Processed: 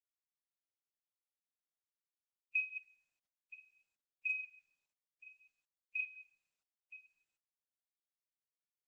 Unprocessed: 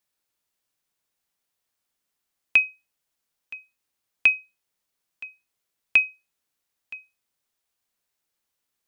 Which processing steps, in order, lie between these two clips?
chunks repeated in reverse 111 ms, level -12 dB; high-pass 110 Hz 6 dB/octave; treble shelf 3.6 kHz -5.5 dB; comb 6.4 ms, depth 30%; de-hum 224 Hz, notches 10; flange 0.71 Hz, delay 3.2 ms, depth 6.1 ms, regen +56%; loudest bins only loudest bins 8; saturation -12.5 dBFS, distortion -21 dB; distance through air 240 m; 3.54–6.01 s: three bands offset in time mids, highs, lows 40/150 ms, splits 620/2500 Hz; plate-style reverb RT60 1.4 s, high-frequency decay 0.35×, pre-delay 0 ms, DRR 14.5 dB; trim -7 dB; Opus 10 kbps 48 kHz

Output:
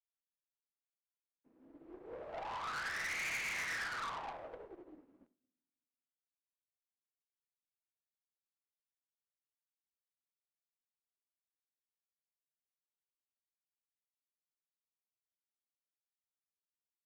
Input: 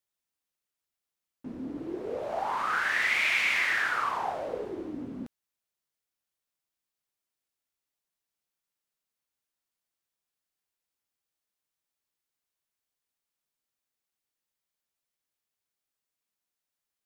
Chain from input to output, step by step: three-band isolator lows -14 dB, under 280 Hz, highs -16 dB, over 2.6 kHz; simulated room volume 570 m³, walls mixed, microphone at 0.67 m; valve stage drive 32 dB, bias 0.45; treble shelf 4.1 kHz +4 dB; upward expansion 2.5:1, over -54 dBFS; trim -4 dB

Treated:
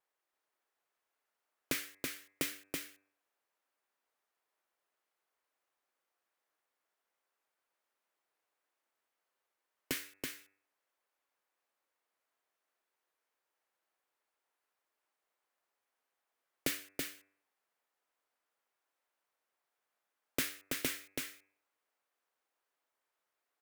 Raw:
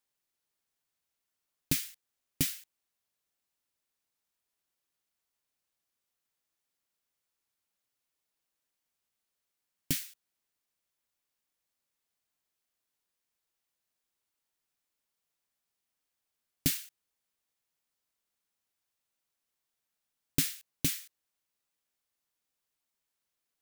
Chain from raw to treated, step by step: dynamic bell 220 Hz, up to -5 dB, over -45 dBFS, Q 1.5; vibrato 2.1 Hz 75 cents; three-band isolator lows -23 dB, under 340 Hz, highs -14 dB, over 2.1 kHz; de-hum 97.53 Hz, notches 27; on a send: delay 329 ms -4 dB; on the sum: trim +6.5 dB

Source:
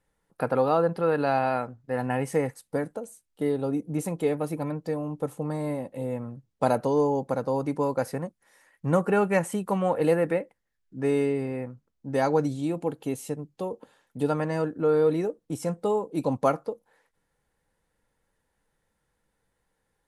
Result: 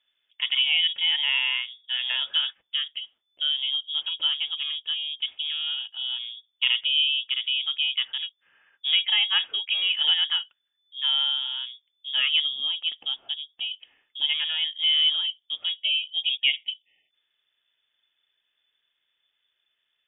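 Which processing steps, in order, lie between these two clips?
frequency inversion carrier 3.5 kHz; spectral selection erased 15.79–17.11 s, 880–1800 Hz; bass shelf 130 Hz -11 dB

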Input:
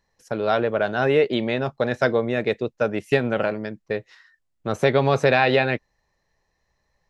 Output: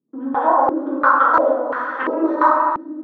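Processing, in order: local Wiener filter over 25 samples; high-pass 70 Hz 24 dB/octave; distance through air 130 m; speed mistake 33 rpm record played at 78 rpm; bass shelf 150 Hz -4 dB; echo that smears into a reverb 469 ms, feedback 47%, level -13.5 dB; plate-style reverb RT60 1.6 s, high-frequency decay 0.45×, pre-delay 0 ms, DRR -7 dB; step-sequenced low-pass 2.9 Hz 270–1800 Hz; trim -5 dB

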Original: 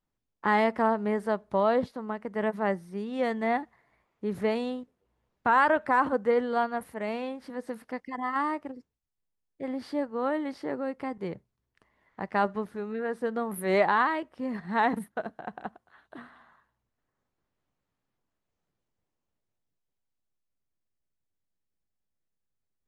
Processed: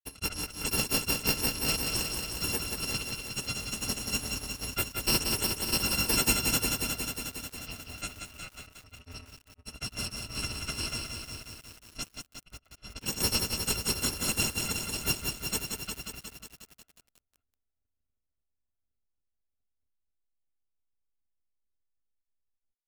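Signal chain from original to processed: bit-reversed sample order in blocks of 256 samples; level-controlled noise filter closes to 930 Hz, open at -21.5 dBFS; granulator 100 ms, spray 841 ms, pitch spread up and down by 0 st; in parallel at -4.5 dB: sample-and-hold 33×; on the sum: delay 162 ms -21 dB; bit-crushed delay 180 ms, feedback 80%, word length 8-bit, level -4.5 dB; trim -2 dB

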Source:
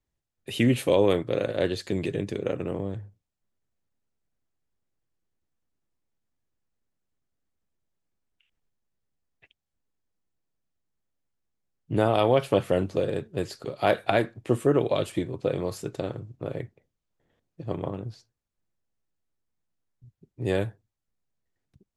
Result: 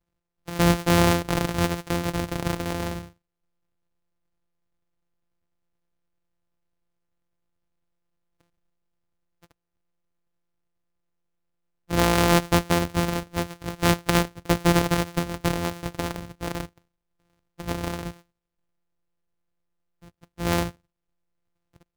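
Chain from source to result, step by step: sorted samples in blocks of 256 samples; trim +2 dB

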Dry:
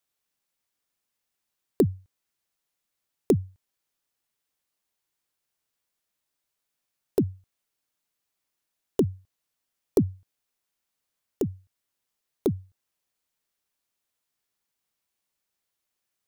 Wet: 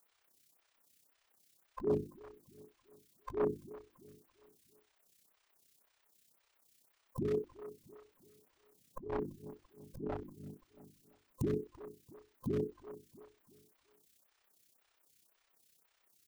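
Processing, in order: every band turned upside down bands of 500 Hz; 7.28–10.01 s: peaking EQ 150 Hz +12.5 dB 2.9 oct; hum notches 50/100/150/200/250/300/350 Hz; compressor with a negative ratio -34 dBFS, ratio -1; AM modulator 32 Hz, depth 45%; hard clipper -30.5 dBFS, distortion -8 dB; feedback delay 338 ms, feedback 43%, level -17 dB; lamp-driven phase shifter 1.9 Hz; trim +5 dB

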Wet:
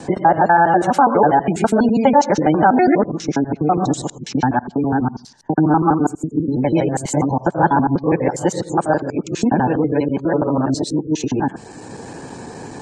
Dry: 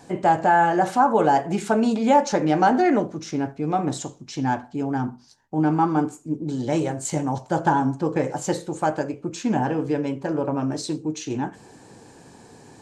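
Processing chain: time reversed locally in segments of 82 ms; spectral gate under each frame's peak -30 dB strong; three bands compressed up and down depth 40%; trim +6 dB

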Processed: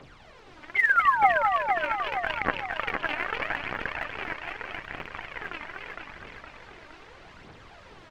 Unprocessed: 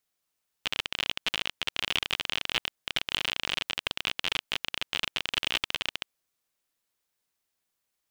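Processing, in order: sawtooth pitch modulation -12 st, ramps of 263 ms; Doppler pass-by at 2.76 s, 13 m/s, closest 11 m; bass shelf 240 Hz -8.5 dB; band-stop 3.7 kHz, Q 7.9; word length cut 8-bit, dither triangular; tape spacing loss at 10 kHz 42 dB; painted sound fall, 0.75–1.43 s, 550–2200 Hz -31 dBFS; on a send: delay 239 ms -8.5 dB; on the sum: phaser 0.8 Hz, delay 3.4 ms, feedback 67%; modulated delay 464 ms, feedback 53%, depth 80 cents, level -6 dB; trim +7 dB

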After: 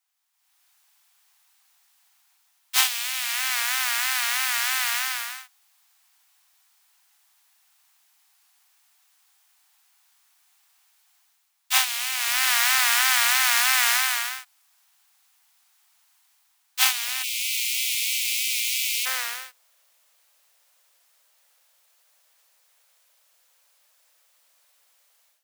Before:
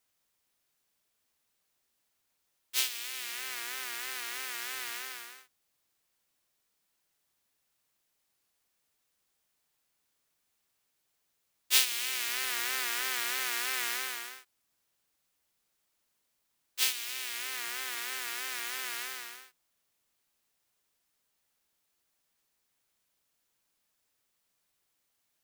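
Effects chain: tracing distortion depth 0.18 ms; steep high-pass 700 Hz 96 dB/octave, from 17.22 s 2.2 kHz, from 19.05 s 480 Hz; level rider gain up to 15.5 dB; trim -1 dB

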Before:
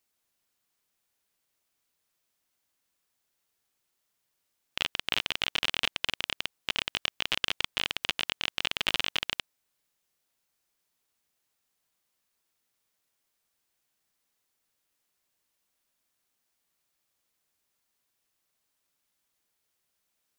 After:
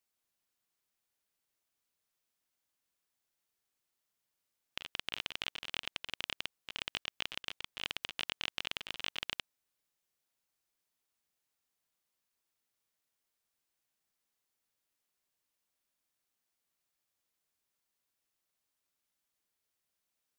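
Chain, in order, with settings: compressor with a negative ratio -32 dBFS, ratio -0.5; trim -8 dB

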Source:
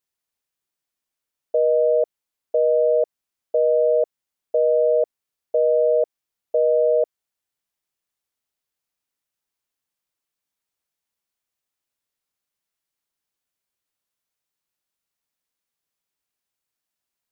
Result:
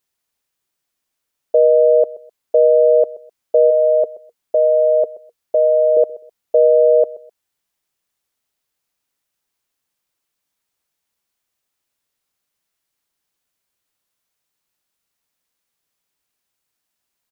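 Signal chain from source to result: 3.70–5.97 s: band-stop 470 Hz, Q 12; feedback delay 128 ms, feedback 25%, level -19 dB; trim +7 dB

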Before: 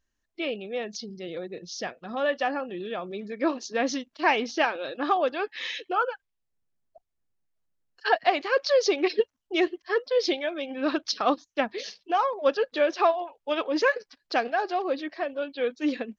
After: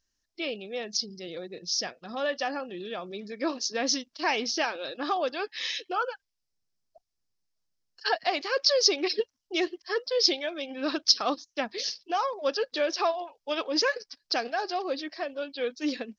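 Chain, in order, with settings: in parallel at -2 dB: peak limiter -17 dBFS, peak gain reduction 9 dB; on the sum: peaking EQ 5.2 kHz +15 dB 0.78 oct; trim -8.5 dB

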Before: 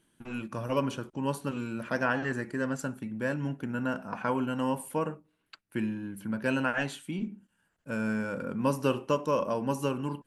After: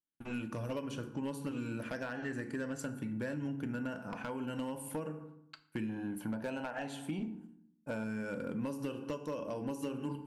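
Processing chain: 5.89–8.04 s: peaking EQ 780 Hz +13.5 dB 0.83 oct; expander -51 dBFS; FDN reverb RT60 0.66 s, low-frequency decay 1.45×, high-frequency decay 0.7×, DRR 9.5 dB; compression 16:1, threshold -32 dBFS, peak gain reduction 15 dB; hard clipper -28 dBFS, distortion -21 dB; dynamic bell 1.1 kHz, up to -5 dB, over -50 dBFS, Q 1.5; trim -1 dB

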